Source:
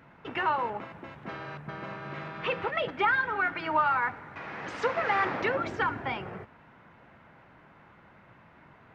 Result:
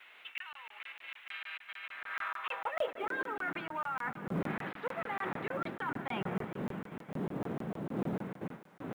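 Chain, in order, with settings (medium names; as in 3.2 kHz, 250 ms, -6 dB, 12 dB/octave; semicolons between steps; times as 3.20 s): wind noise 430 Hz -36 dBFS; gate with hold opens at -39 dBFS; Chebyshev low-pass 3.7 kHz, order 4; reverse; compression 12:1, threshold -40 dBFS, peak gain reduction 21.5 dB; reverse; high-pass sweep 2.5 kHz -> 170 Hz, 1.83–3.66 s; companded quantiser 8-bit; thinning echo 194 ms, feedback 79%, high-pass 530 Hz, level -15.5 dB; crackling interface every 0.15 s, samples 1024, zero, from 0.38 s; trim +5 dB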